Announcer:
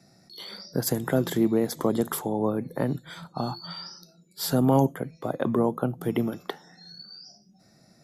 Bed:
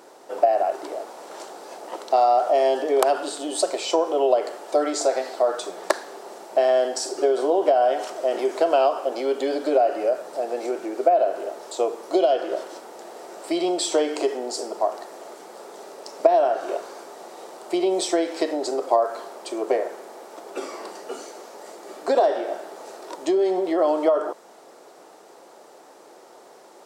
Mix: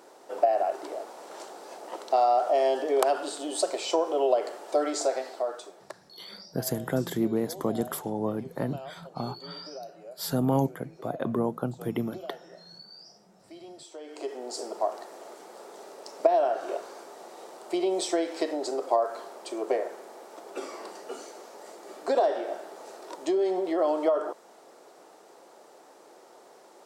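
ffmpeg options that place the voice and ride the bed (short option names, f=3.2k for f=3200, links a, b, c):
-filter_complex "[0:a]adelay=5800,volume=-4dB[a];[1:a]volume=13.5dB,afade=t=out:st=4.97:d=0.96:silence=0.11885,afade=t=in:st=14:d=0.67:silence=0.125893[b];[a][b]amix=inputs=2:normalize=0"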